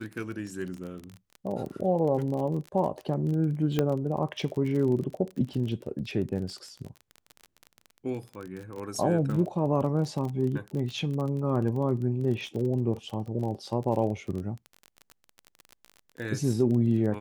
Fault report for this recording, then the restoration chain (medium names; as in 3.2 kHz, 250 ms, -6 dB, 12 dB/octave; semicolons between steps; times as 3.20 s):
crackle 27 per s -33 dBFS
3.79 s: pop -12 dBFS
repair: de-click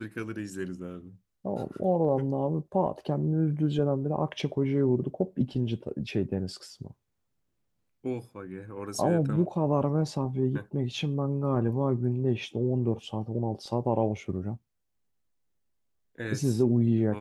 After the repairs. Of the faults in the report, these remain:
nothing left